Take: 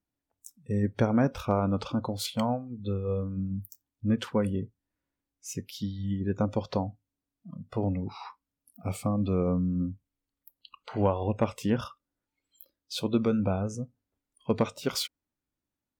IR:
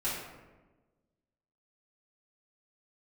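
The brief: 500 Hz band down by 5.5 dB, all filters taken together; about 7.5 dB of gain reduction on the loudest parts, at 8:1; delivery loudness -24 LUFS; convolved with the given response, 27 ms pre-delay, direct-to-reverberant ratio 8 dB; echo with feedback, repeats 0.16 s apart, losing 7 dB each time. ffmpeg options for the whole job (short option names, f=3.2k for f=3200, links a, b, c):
-filter_complex "[0:a]equalizer=f=500:t=o:g=-6.5,acompressor=threshold=-29dB:ratio=8,aecho=1:1:160|320|480|640|800:0.447|0.201|0.0905|0.0407|0.0183,asplit=2[a][b];[1:a]atrim=start_sample=2205,adelay=27[c];[b][c]afir=irnorm=-1:irlink=0,volume=-14.5dB[d];[a][d]amix=inputs=2:normalize=0,volume=10.5dB"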